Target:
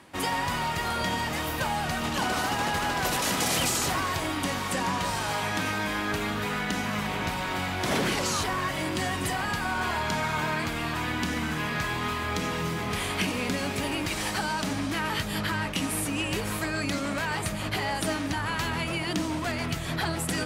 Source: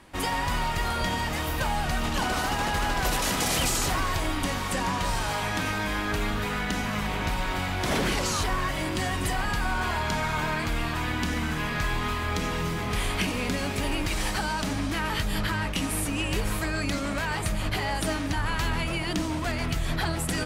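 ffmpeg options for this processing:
-af "highpass=100,areverse,acompressor=mode=upward:threshold=-34dB:ratio=2.5,areverse"

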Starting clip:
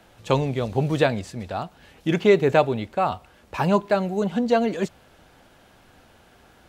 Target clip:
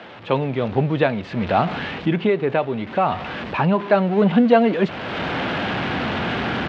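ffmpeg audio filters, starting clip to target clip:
-filter_complex "[0:a]aeval=exprs='val(0)+0.5*0.0282*sgn(val(0))':c=same,dynaudnorm=f=180:g=3:m=16dB,asubboost=boost=4.5:cutoff=250,highpass=190,asettb=1/sr,asplit=3[a][b][c];[a]atrim=end=1.604[d];[b]atrim=start=1.6:end=3.8,asetpts=PTS-STARTPTS,afade=t=in:d=0.004:c=qsin,afade=t=out:st=2.196:d=0.004:c=qsin,acompressor=threshold=-14dB:ratio=2.5[e];[c]atrim=start=3.796[f];[d][e]acrossfade=d=0.004:c1=hsin:c2=qsin[g];[g][f]acrossfade=d=0.004:c1=qsin:c2=hsin,lowpass=f=3.3k:w=0.5412,lowpass=f=3.3k:w=1.3066,volume=-2dB"

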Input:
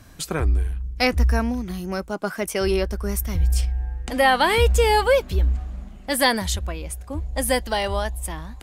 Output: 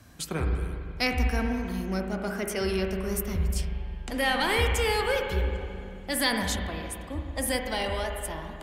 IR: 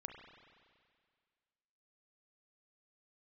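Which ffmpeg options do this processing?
-filter_complex "[0:a]highpass=55,acrossover=split=380|1500|2400[a][b][c][d];[b]asoftclip=type=tanh:threshold=-27dB[e];[a][e][c][d]amix=inputs=4:normalize=0[f];[1:a]atrim=start_sample=2205,asetrate=38367,aresample=44100[g];[f][g]afir=irnorm=-1:irlink=0"

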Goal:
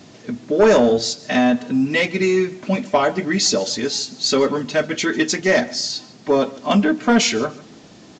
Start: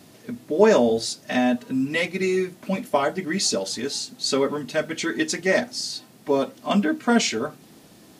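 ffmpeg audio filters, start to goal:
-af "aresample=16000,asoftclip=type=tanh:threshold=-12dB,aresample=44100,aecho=1:1:146|292:0.0891|0.0223,volume=6dB"

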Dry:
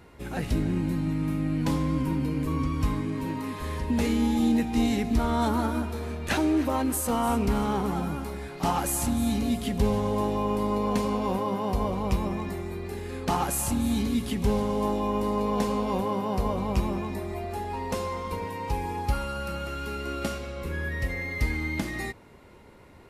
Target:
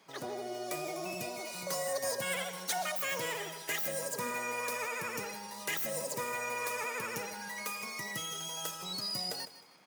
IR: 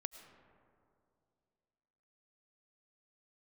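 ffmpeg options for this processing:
-filter_complex "[0:a]highpass=94,acrossover=split=480|2300[a][b][c];[a]flanger=delay=9:depth=6.7:regen=67:speed=1.9:shape=triangular[d];[c]dynaudnorm=f=210:g=13:m=11.5dB[e];[d][b][e]amix=inputs=3:normalize=0,asoftclip=type=hard:threshold=-19dB,asplit=2[f][g];[g]aecho=0:1:364|728|1092:0.178|0.064|0.023[h];[f][h]amix=inputs=2:normalize=0,asetrate=103194,aresample=44100,volume=-8dB"

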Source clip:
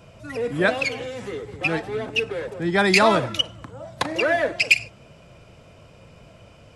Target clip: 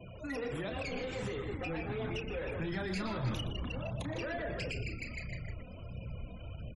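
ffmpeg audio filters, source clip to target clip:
-filter_complex "[0:a]flanger=delay=0.3:depth=3.8:regen=2:speed=1.5:shape=sinusoidal,asplit=2[a][b];[b]asplit=5[c][d][e][f][g];[c]adelay=154,afreqshift=-90,volume=-14.5dB[h];[d]adelay=308,afreqshift=-180,volume=-20.2dB[i];[e]adelay=462,afreqshift=-270,volume=-25.9dB[j];[f]adelay=616,afreqshift=-360,volume=-31.5dB[k];[g]adelay=770,afreqshift=-450,volume=-37.2dB[l];[h][i][j][k][l]amix=inputs=5:normalize=0[m];[a][m]amix=inputs=2:normalize=0,acrossover=split=110|570[n][o][p];[n]acompressor=threshold=-46dB:ratio=4[q];[o]acompressor=threshold=-36dB:ratio=4[r];[p]acompressor=threshold=-38dB:ratio=4[s];[q][r][s]amix=inputs=3:normalize=0,highshelf=f=10k:g=10,alimiter=level_in=4.5dB:limit=-24dB:level=0:latency=1:release=58,volume=-4.5dB,bandreject=f=50:t=h:w=6,bandreject=f=100:t=h:w=6,bandreject=f=150:t=h:w=6,asoftclip=type=tanh:threshold=-33.5dB,asubboost=boost=3:cutoff=200,asplit=2[t][u];[u]aecho=0:1:32.07|119.5:0.398|0.355[v];[t][v]amix=inputs=2:normalize=0,afftfilt=real='re*gte(hypot(re,im),0.00282)':imag='im*gte(hypot(re,im),0.00282)':win_size=1024:overlap=0.75,volume=1dB"

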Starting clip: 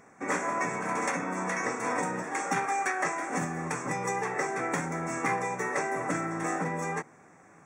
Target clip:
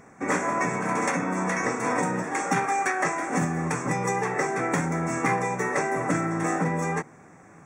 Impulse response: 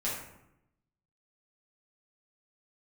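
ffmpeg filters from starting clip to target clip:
-af "lowshelf=f=230:g=7.5,volume=3.5dB"

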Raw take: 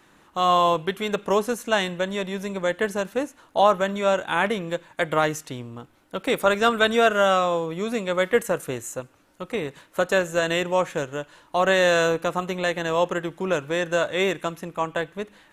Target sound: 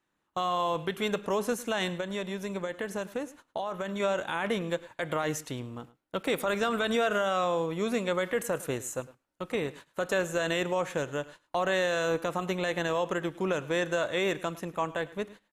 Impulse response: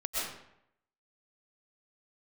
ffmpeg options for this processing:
-filter_complex "[0:a]agate=range=-21dB:threshold=-44dB:ratio=16:detection=peak,alimiter=limit=-16.5dB:level=0:latency=1:release=49,asettb=1/sr,asplit=3[a][b][c];[a]atrim=end=1.944[d];[b]atrim=start=1.94:end=4,asetpts=PTS-STARTPTS,afade=t=in:d=0.004:c=qsin,afade=t=out:st=2.056:d=0.004:c=qsin,acompressor=threshold=-29dB:ratio=3[e];[c]atrim=start=3.996[f];[d][e]acrossfade=d=0.004:c1=hsin:c2=qsin[g];[g][f]acrossfade=d=0.004:c1=qsin:c2=hsin,aecho=1:1:106:0.106,volume=-2.5dB"

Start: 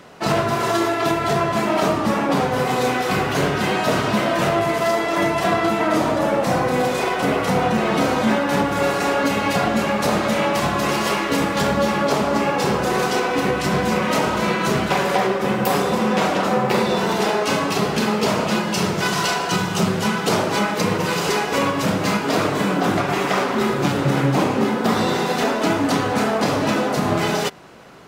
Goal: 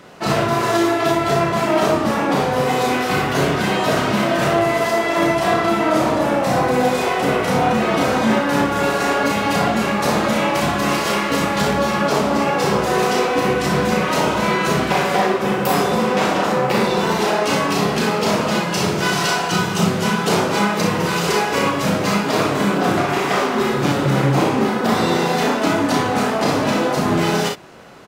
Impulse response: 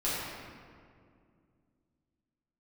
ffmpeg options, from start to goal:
-af "aecho=1:1:35|59:0.562|0.473"

